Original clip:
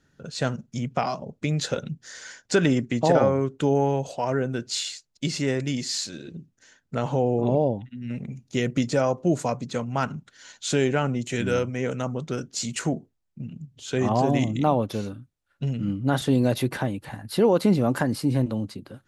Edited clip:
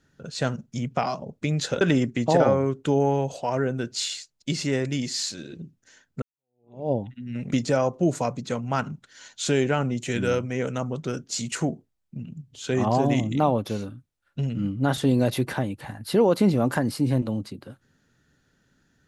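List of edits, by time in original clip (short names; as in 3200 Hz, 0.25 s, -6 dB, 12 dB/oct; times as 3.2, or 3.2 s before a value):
1.81–2.56 cut
6.97–7.66 fade in exponential
8.27–8.76 cut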